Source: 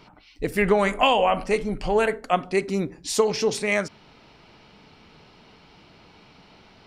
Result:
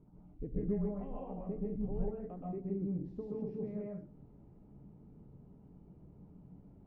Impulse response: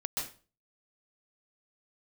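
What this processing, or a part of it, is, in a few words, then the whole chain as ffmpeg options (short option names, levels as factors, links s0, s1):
television next door: -filter_complex "[0:a]acompressor=threshold=0.0355:ratio=4,lowpass=270[s0];[1:a]atrim=start_sample=2205[s1];[s0][s1]afir=irnorm=-1:irlink=0,volume=0.668"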